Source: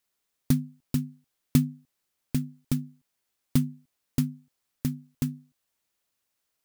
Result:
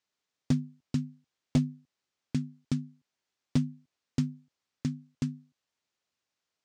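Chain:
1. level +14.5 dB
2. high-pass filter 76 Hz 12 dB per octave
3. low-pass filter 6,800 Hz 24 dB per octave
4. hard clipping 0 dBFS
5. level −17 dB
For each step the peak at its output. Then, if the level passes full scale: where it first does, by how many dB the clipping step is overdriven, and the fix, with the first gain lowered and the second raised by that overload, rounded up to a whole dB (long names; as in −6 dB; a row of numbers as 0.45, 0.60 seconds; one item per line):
+8.5, +8.0, +6.0, 0.0, −17.0 dBFS
step 1, 6.0 dB
step 1 +8.5 dB, step 5 −11 dB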